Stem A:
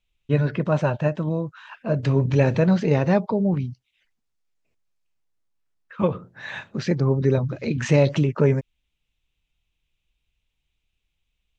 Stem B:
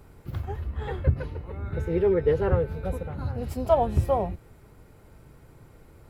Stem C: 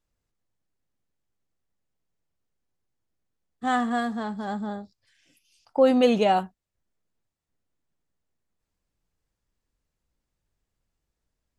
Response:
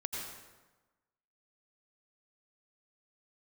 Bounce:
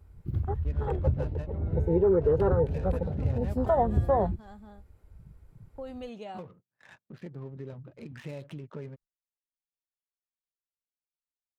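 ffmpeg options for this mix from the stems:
-filter_complex "[0:a]adynamicequalizer=threshold=0.00447:dfrequency=3500:dqfactor=1.9:tfrequency=3500:tqfactor=1.9:attack=5:release=100:ratio=0.375:range=2.5:mode=boostabove:tftype=bell,adynamicsmooth=sensitivity=3.5:basefreq=640,adelay=350,volume=-18dB[a];[1:a]afwtdn=0.02,volume=2.5dB[b];[2:a]volume=-18.5dB[c];[a][c]amix=inputs=2:normalize=0,agate=range=-25dB:threshold=-53dB:ratio=16:detection=peak,acompressor=threshold=-38dB:ratio=2.5,volume=0dB[d];[b][d]amix=inputs=2:normalize=0,alimiter=limit=-15dB:level=0:latency=1:release=97"

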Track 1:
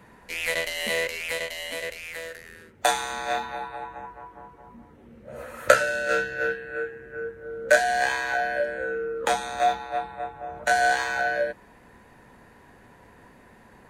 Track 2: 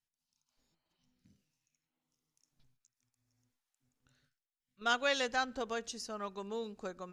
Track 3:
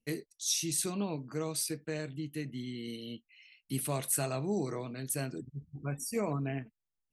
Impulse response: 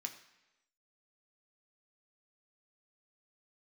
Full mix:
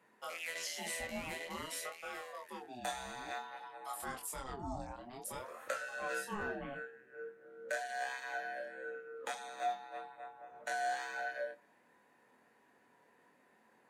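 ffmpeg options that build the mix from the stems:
-filter_complex "[0:a]highpass=250,volume=-13dB,asplit=2[a][b];[b]volume=-12dB[c];[2:a]aeval=exprs='val(0)*sin(2*PI*700*n/s+700*0.4/0.53*sin(2*PI*0.53*n/s))':c=same,adelay=150,volume=-3.5dB[d];[a][d]amix=inputs=2:normalize=0,flanger=delay=22.5:depth=2.5:speed=0.87,alimiter=level_in=5dB:limit=-24dB:level=0:latency=1:release=292,volume=-5dB,volume=0dB[e];[3:a]atrim=start_sample=2205[f];[c][f]afir=irnorm=-1:irlink=0[g];[e][g]amix=inputs=2:normalize=0"

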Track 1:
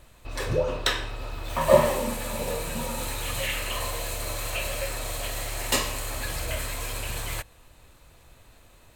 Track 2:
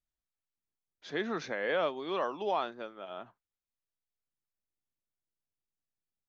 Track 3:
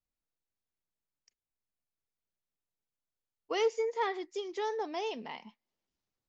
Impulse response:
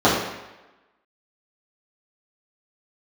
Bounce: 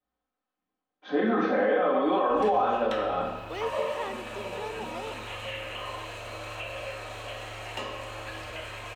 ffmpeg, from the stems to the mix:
-filter_complex "[0:a]equalizer=f=2.8k:t=o:w=0.28:g=5.5,acrossover=split=1100|2500|7400[a][b][c][d];[a]acompressor=threshold=-37dB:ratio=4[e];[b]acompressor=threshold=-37dB:ratio=4[f];[c]acompressor=threshold=-38dB:ratio=4[g];[d]acompressor=threshold=-55dB:ratio=4[h];[e][f][g][h]amix=inputs=4:normalize=0,adelay=2050,volume=-5dB,asplit=2[i][j];[j]volume=-22dB[k];[1:a]lowpass=4k,aecho=1:1:3.9:0.63,alimiter=level_in=1.5dB:limit=-24dB:level=0:latency=1,volume=-1.5dB,volume=-6dB,asplit=2[l][m];[m]volume=-6dB[n];[2:a]volume=-4dB[o];[3:a]atrim=start_sample=2205[p];[k][n]amix=inputs=2:normalize=0[q];[q][p]afir=irnorm=-1:irlink=0[r];[i][l][o][r]amix=inputs=4:normalize=0,bass=f=250:g=-6,treble=f=4k:g=-8,alimiter=limit=-16dB:level=0:latency=1:release=46"

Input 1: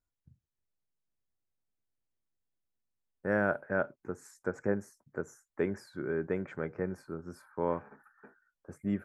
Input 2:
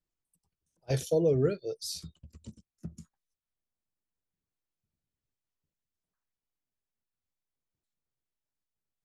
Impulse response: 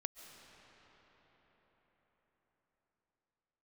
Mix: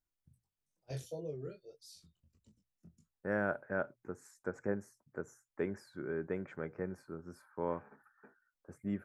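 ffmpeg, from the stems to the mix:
-filter_complex "[0:a]volume=-5dB[a];[1:a]flanger=delay=19.5:depth=3.9:speed=1.6,volume=-7dB,afade=t=out:st=0.64:d=0.76:silence=0.398107[b];[a][b]amix=inputs=2:normalize=0,bandreject=f=60:t=h:w=6,bandreject=f=120:t=h:w=6"

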